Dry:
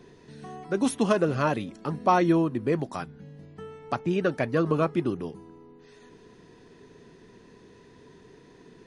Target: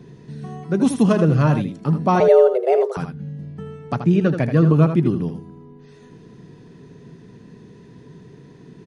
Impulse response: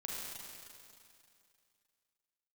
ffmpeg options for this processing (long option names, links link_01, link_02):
-filter_complex "[0:a]equalizer=frequency=150:width=0.89:gain=14,asettb=1/sr,asplit=3[link_01][link_02][link_03];[link_01]atrim=end=2.204[link_04];[link_02]atrim=start=2.2:end=2.97,asetpts=PTS-STARTPTS,afade=type=in:duration=0.004:curve=qsin,afade=type=out:start_time=0.766:duration=0.004:curve=qsin,afreqshift=260[link_05];[link_03]atrim=start=2.966[link_06];[link_04][link_05]acrossfade=duration=0.004:curve1=hsin:curve2=qsin[link_07];[link_07][link_06]acrossfade=duration=0.004:curve1=qsin:curve2=hsin,asplit=2[link_08][link_09];[link_09]aecho=0:1:80:0.376[link_10];[link_08][link_10]amix=inputs=2:normalize=0,volume=1dB"